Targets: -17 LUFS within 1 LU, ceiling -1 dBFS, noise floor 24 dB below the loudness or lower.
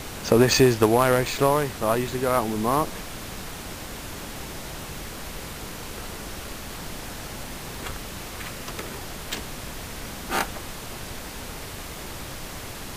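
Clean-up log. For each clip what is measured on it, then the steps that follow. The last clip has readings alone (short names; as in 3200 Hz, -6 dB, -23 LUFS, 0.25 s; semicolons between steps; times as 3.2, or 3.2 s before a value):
noise floor -37 dBFS; noise floor target -51 dBFS; loudness -27.0 LUFS; peak -5.0 dBFS; loudness target -17.0 LUFS
-> noise print and reduce 14 dB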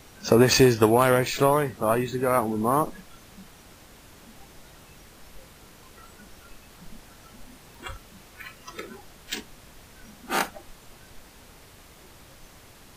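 noise floor -51 dBFS; loudness -22.5 LUFS; peak -5.0 dBFS; loudness target -17.0 LUFS
-> gain +5.5 dB; limiter -1 dBFS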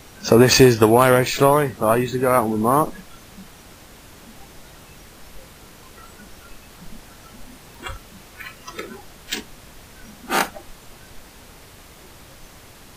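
loudness -17.0 LUFS; peak -1.0 dBFS; noise floor -46 dBFS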